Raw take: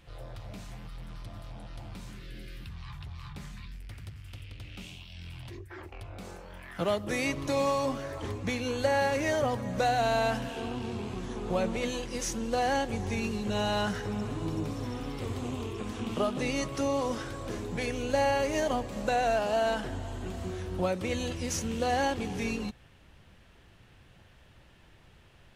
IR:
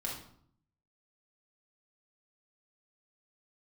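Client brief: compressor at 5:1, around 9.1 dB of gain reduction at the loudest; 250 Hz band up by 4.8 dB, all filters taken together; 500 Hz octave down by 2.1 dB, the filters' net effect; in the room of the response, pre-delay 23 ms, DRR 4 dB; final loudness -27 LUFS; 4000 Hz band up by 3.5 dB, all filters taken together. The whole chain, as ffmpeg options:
-filter_complex "[0:a]equalizer=f=250:t=o:g=6.5,equalizer=f=500:t=o:g=-4,equalizer=f=4k:t=o:g=4.5,acompressor=threshold=-34dB:ratio=5,asplit=2[a][b];[1:a]atrim=start_sample=2205,adelay=23[c];[b][c]afir=irnorm=-1:irlink=0,volume=-6dB[d];[a][d]amix=inputs=2:normalize=0,volume=9dB"

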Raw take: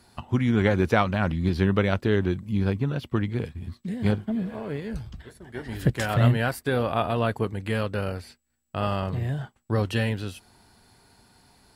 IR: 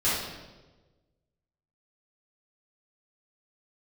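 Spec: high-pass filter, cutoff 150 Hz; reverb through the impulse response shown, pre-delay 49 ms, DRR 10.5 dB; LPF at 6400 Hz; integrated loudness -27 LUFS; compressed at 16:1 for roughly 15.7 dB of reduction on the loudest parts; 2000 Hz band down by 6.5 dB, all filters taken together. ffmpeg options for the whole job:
-filter_complex "[0:a]highpass=150,lowpass=6.4k,equalizer=f=2k:t=o:g=-9,acompressor=threshold=-34dB:ratio=16,asplit=2[a][b];[1:a]atrim=start_sample=2205,adelay=49[c];[b][c]afir=irnorm=-1:irlink=0,volume=-23dB[d];[a][d]amix=inputs=2:normalize=0,volume=13dB"

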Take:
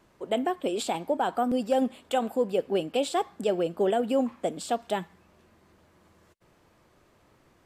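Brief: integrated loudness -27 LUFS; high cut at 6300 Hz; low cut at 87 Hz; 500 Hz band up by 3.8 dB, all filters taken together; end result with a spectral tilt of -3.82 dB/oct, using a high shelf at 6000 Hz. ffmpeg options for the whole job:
-af "highpass=87,lowpass=6.3k,equalizer=f=500:t=o:g=4.5,highshelf=f=6k:g=3.5,volume=-1.5dB"

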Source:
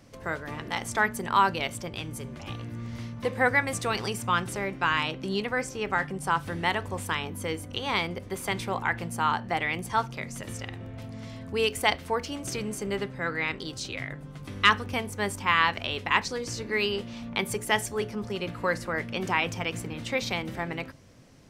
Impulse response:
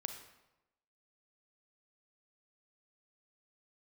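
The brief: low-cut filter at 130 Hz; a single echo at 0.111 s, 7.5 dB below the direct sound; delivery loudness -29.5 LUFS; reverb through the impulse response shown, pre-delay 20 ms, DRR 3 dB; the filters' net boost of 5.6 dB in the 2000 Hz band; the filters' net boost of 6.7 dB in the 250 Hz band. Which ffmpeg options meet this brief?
-filter_complex "[0:a]highpass=130,equalizer=f=250:t=o:g=9,equalizer=f=2k:t=o:g=6.5,aecho=1:1:111:0.422,asplit=2[a][b];[1:a]atrim=start_sample=2205,adelay=20[c];[b][c]afir=irnorm=-1:irlink=0,volume=-1.5dB[d];[a][d]amix=inputs=2:normalize=0,volume=-7.5dB"

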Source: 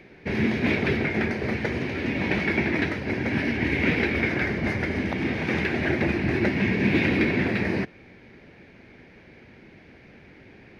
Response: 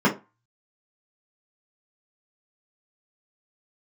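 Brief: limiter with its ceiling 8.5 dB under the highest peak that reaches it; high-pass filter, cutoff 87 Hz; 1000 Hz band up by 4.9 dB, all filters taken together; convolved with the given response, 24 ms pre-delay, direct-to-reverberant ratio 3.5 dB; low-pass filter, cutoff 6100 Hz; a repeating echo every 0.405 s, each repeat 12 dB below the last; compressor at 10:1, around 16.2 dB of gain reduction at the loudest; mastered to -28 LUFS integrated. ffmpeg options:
-filter_complex "[0:a]highpass=87,lowpass=6.1k,equalizer=f=1k:t=o:g=6.5,acompressor=threshold=-35dB:ratio=10,alimiter=level_in=8.5dB:limit=-24dB:level=0:latency=1,volume=-8.5dB,aecho=1:1:405|810|1215:0.251|0.0628|0.0157,asplit=2[a][b];[1:a]atrim=start_sample=2205,adelay=24[c];[b][c]afir=irnorm=-1:irlink=0,volume=-21dB[d];[a][d]amix=inputs=2:normalize=0,volume=9.5dB"

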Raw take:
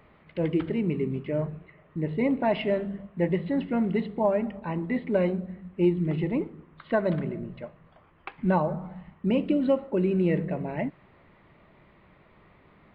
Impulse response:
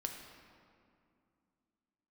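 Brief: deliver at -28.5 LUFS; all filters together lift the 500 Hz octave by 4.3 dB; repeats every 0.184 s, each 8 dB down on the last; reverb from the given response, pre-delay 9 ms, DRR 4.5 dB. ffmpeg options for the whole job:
-filter_complex "[0:a]equalizer=f=500:t=o:g=5.5,aecho=1:1:184|368|552|736|920:0.398|0.159|0.0637|0.0255|0.0102,asplit=2[a][b];[1:a]atrim=start_sample=2205,adelay=9[c];[b][c]afir=irnorm=-1:irlink=0,volume=-4dB[d];[a][d]amix=inputs=2:normalize=0,volume=-5dB"

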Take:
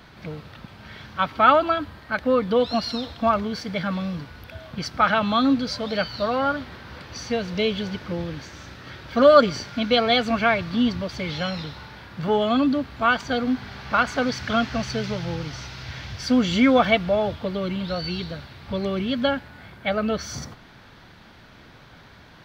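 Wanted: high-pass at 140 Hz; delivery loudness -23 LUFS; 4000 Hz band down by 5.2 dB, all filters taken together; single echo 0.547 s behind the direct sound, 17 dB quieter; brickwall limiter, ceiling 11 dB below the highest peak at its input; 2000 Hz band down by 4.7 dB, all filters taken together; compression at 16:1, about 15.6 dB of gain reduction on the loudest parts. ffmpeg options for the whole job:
-af "highpass=140,equalizer=f=2k:t=o:g=-6,equalizer=f=4k:t=o:g=-4.5,acompressor=threshold=-25dB:ratio=16,alimiter=level_in=3dB:limit=-24dB:level=0:latency=1,volume=-3dB,aecho=1:1:547:0.141,volume=13dB"

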